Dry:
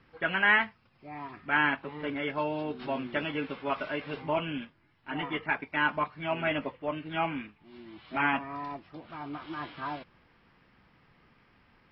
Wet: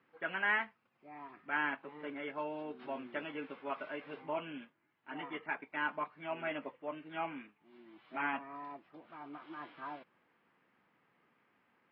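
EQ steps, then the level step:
band-pass filter 240–2,700 Hz
−8.0 dB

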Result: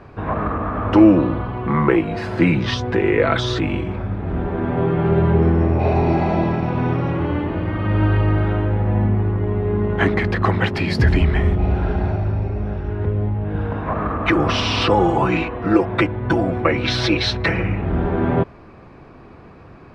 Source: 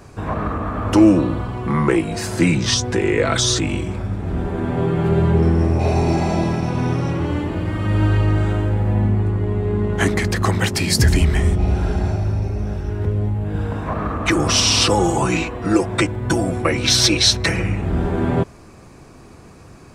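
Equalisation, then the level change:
high-frequency loss of the air 380 metres
low-shelf EQ 350 Hz −5.5 dB
+4.5 dB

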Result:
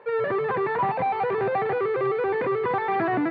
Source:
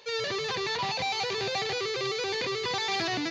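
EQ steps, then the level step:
high-pass filter 130 Hz 12 dB per octave
low-pass filter 1,600 Hz 24 dB per octave
+8.5 dB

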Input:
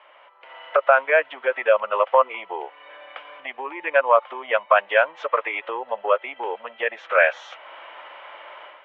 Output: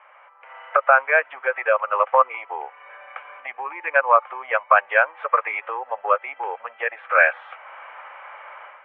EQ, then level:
loudspeaker in its box 400–2,800 Hz, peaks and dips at 500 Hz +5 dB, 800 Hz +9 dB, 1,200 Hz +10 dB, 1,600 Hz +8 dB, 2,300 Hz +8 dB
−6.5 dB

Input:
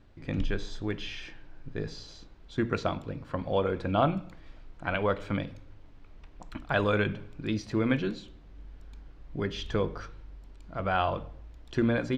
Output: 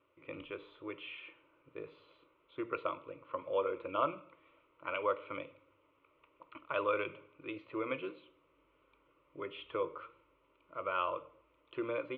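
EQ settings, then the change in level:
loudspeaker in its box 400–2,500 Hz, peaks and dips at 420 Hz −8 dB, 800 Hz −9 dB, 1,900 Hz −7 dB
phaser with its sweep stopped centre 1,100 Hz, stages 8
+1.0 dB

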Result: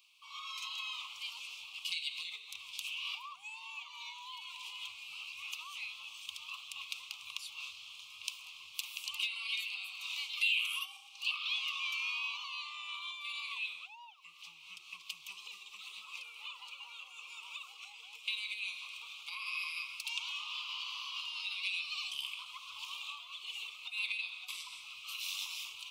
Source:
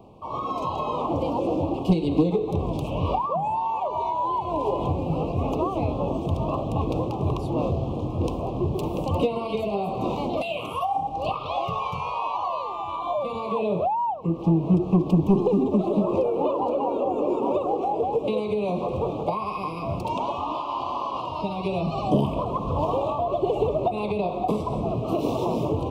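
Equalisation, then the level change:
elliptic high-pass filter 1,700 Hz, stop band 60 dB
+6.0 dB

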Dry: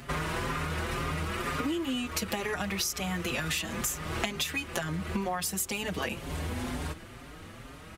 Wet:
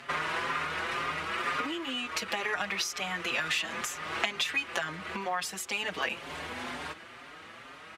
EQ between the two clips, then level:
resonant band-pass 2,900 Hz, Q 0.57
high-shelf EQ 2,600 Hz −10 dB
+8.5 dB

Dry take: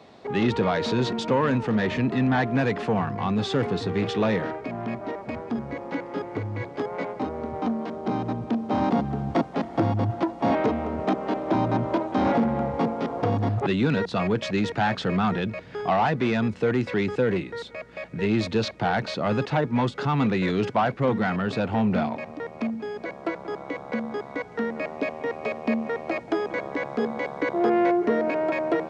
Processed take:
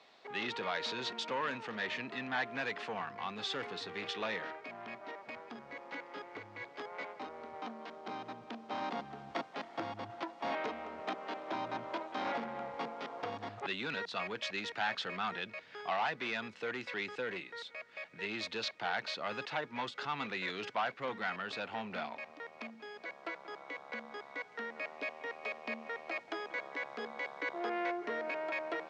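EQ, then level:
resonant band-pass 3,900 Hz, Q 0.58
high-shelf EQ 4,600 Hz −5.5 dB
−2.5 dB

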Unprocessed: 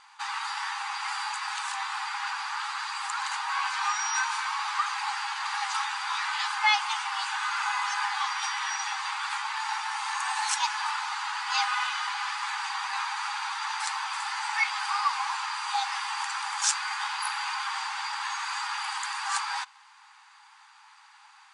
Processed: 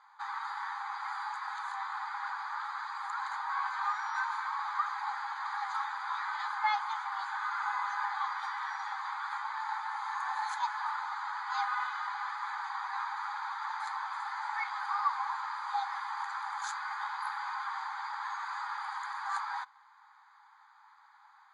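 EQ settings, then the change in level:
moving average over 16 samples
high-pass filter 770 Hz
0.0 dB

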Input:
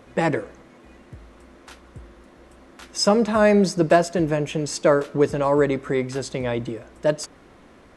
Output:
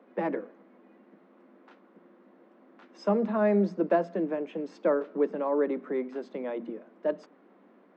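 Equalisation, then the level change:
Butterworth high-pass 180 Hz 96 dB per octave
head-to-tape spacing loss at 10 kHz 43 dB
mains-hum notches 60/120/180/240 Hz
−5.5 dB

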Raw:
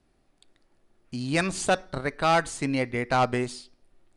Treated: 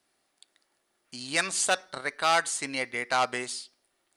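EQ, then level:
high-pass filter 1,400 Hz 6 dB per octave
high-shelf EQ 9,100 Hz +8 dB
notch filter 2,500 Hz, Q 21
+3.0 dB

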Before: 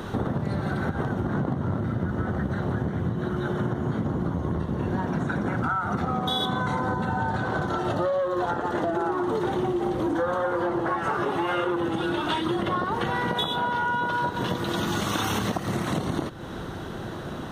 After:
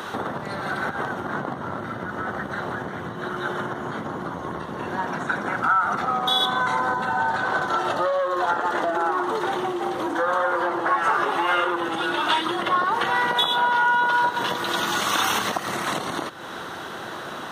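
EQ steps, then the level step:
high-pass filter 950 Hz 6 dB per octave
parametric band 1,200 Hz +3 dB 1.5 octaves
+6.5 dB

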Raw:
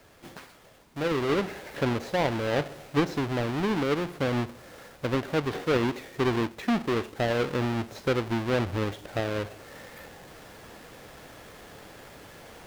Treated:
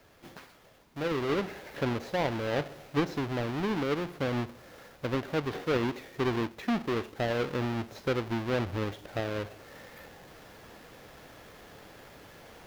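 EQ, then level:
parametric band 8,500 Hz −4.5 dB 0.52 octaves
−3.5 dB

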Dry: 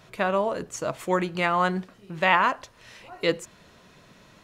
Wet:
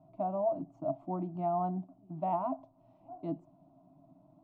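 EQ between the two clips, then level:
pair of resonant band-passes 420 Hz, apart 1.3 octaves
spectral tilt −4.5 dB per octave
phaser with its sweep stopped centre 340 Hz, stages 8
0.0 dB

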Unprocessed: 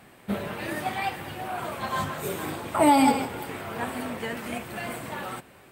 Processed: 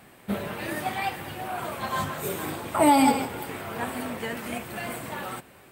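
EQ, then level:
high-shelf EQ 9,900 Hz +5 dB
0.0 dB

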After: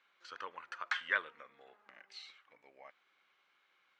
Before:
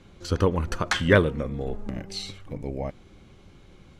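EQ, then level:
four-pole ladder band-pass 1,900 Hz, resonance 25%
+1.0 dB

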